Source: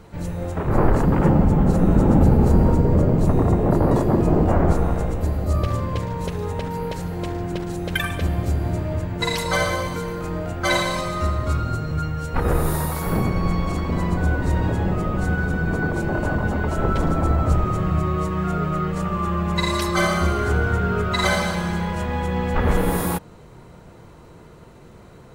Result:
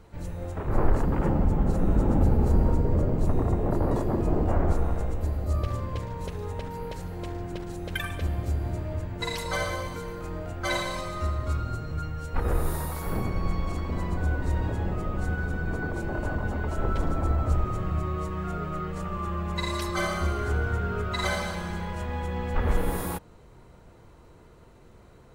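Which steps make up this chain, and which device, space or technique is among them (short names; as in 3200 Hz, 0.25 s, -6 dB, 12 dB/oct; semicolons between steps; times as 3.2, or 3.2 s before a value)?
low shelf boost with a cut just above (low shelf 69 Hz +7 dB; bell 160 Hz -4.5 dB 0.76 oct); gain -8 dB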